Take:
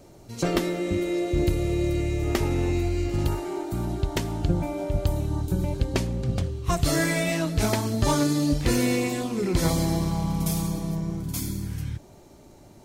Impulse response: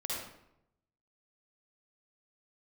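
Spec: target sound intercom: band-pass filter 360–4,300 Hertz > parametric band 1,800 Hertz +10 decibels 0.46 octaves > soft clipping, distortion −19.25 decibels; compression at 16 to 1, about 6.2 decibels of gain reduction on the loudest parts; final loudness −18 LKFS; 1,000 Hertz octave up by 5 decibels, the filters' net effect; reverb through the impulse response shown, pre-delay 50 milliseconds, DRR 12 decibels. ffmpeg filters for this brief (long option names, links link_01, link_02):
-filter_complex "[0:a]equalizer=frequency=1000:width_type=o:gain=5.5,acompressor=threshold=-23dB:ratio=16,asplit=2[link_01][link_02];[1:a]atrim=start_sample=2205,adelay=50[link_03];[link_02][link_03]afir=irnorm=-1:irlink=0,volume=-15dB[link_04];[link_01][link_04]amix=inputs=2:normalize=0,highpass=360,lowpass=4300,equalizer=frequency=1800:width_type=o:width=0.46:gain=10,asoftclip=threshold=-20.5dB,volume=15dB"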